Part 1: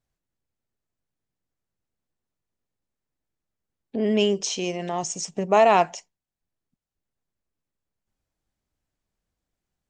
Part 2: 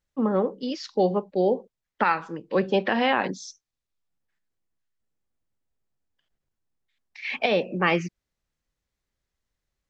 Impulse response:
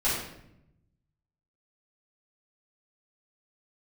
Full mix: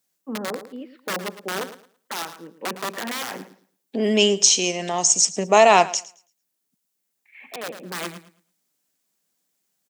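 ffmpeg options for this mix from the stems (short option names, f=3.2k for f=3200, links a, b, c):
-filter_complex "[0:a]crystalizer=i=4:c=0,volume=2dB,asplit=3[a][b][c];[b]volume=-19dB[d];[1:a]lowpass=f=2.4k:w=0.5412,lowpass=f=2.4k:w=1.3066,aeval=exprs='(mod(5.96*val(0)+1,2)-1)/5.96':c=same,adelay=100,volume=-6dB,asplit=2[e][f];[f]volume=-13dB[g];[c]apad=whole_len=440702[h];[e][h]sidechaincompress=threshold=-36dB:ratio=3:attack=16:release=1260[i];[d][g]amix=inputs=2:normalize=0,aecho=0:1:110|220|330|440:1|0.23|0.0529|0.0122[j];[a][i][j]amix=inputs=3:normalize=0,highpass=f=170:w=0.5412,highpass=f=170:w=1.3066"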